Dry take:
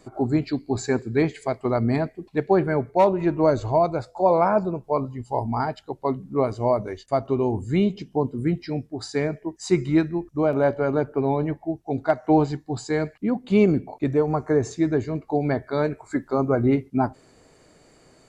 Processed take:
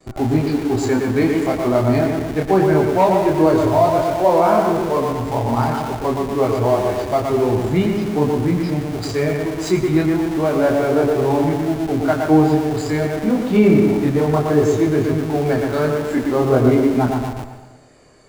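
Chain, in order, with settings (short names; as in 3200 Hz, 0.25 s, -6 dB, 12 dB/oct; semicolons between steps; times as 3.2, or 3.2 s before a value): gate with hold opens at -46 dBFS; on a send: analogue delay 0.119 s, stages 2048, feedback 49%, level -5 dB; on the sum: chorus voices 2, 0.18 Hz, delay 26 ms, depth 1.9 ms; in parallel at -11.5 dB: Schmitt trigger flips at -37 dBFS; on the sum: plate-style reverb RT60 1 s, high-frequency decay 0.8×, pre-delay 80 ms, DRR 9.5 dB; maximiser +8 dB; gain -2.5 dB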